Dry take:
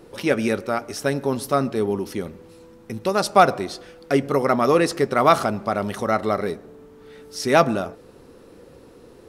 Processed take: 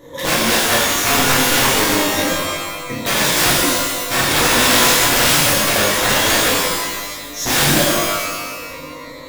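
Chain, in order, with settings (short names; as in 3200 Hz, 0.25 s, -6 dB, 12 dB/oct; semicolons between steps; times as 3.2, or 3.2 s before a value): reverb removal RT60 0.72 s; ripple EQ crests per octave 1.1, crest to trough 17 dB; in parallel at +1.5 dB: limiter -11 dBFS, peak gain reduction 10.5 dB; on the sum: wrapped overs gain 11 dB; shimmer reverb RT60 1.3 s, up +12 st, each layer -2 dB, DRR -7.5 dB; gain -6.5 dB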